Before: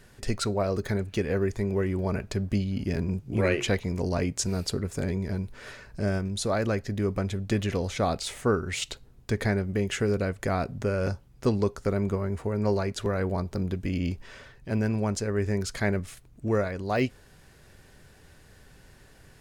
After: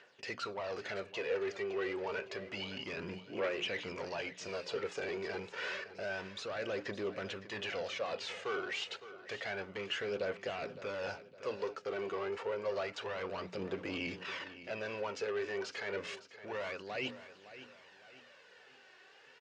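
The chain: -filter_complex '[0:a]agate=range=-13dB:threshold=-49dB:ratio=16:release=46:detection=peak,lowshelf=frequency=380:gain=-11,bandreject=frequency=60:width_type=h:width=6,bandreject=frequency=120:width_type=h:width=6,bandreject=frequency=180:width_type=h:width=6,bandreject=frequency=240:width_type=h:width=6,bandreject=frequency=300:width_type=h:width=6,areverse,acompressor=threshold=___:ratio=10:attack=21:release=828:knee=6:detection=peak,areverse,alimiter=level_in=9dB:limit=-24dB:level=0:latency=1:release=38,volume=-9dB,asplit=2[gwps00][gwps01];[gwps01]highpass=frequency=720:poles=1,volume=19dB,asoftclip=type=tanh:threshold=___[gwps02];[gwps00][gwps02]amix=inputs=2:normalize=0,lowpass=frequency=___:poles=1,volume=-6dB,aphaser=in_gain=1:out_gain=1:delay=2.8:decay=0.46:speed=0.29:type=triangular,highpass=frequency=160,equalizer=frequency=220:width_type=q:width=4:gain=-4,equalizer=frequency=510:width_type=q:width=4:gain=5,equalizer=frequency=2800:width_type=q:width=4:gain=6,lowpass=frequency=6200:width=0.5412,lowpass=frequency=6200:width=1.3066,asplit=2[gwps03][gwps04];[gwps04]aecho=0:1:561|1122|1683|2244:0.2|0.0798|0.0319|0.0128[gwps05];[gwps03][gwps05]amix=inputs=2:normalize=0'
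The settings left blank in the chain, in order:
-38dB, -32.5dB, 2800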